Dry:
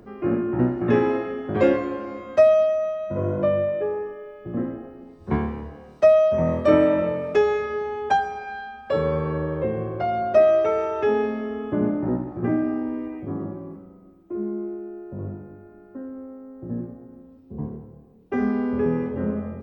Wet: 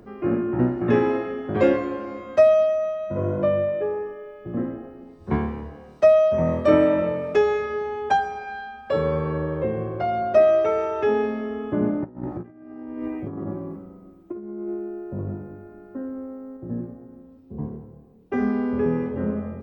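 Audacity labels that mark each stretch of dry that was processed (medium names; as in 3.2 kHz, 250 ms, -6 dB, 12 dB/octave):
12.040000	16.570000	compressor with a negative ratio -31 dBFS, ratio -0.5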